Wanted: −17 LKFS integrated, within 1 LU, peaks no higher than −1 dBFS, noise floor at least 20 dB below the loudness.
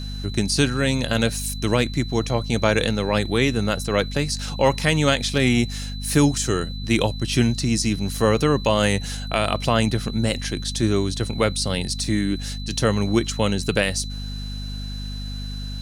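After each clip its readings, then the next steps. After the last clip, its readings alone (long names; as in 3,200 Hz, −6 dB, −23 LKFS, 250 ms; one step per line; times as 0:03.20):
mains hum 50 Hz; hum harmonics up to 250 Hz; level of the hum −28 dBFS; interfering tone 4,000 Hz; level of the tone −37 dBFS; integrated loudness −22.5 LKFS; sample peak −4.5 dBFS; target loudness −17.0 LKFS
→ hum removal 50 Hz, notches 5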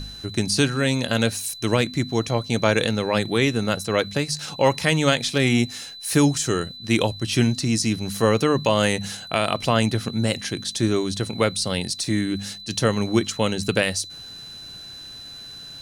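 mains hum none found; interfering tone 4,000 Hz; level of the tone −37 dBFS
→ notch filter 4,000 Hz, Q 30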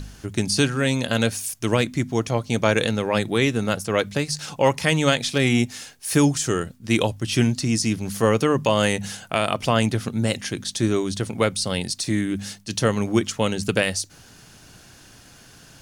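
interfering tone none found; integrated loudness −22.5 LKFS; sample peak −5.0 dBFS; target loudness −17.0 LKFS
→ level +5.5 dB
brickwall limiter −1 dBFS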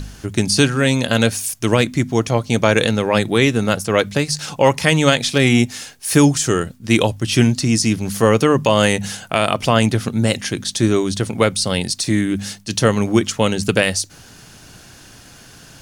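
integrated loudness −17.0 LKFS; sample peak −1.0 dBFS; background noise floor −43 dBFS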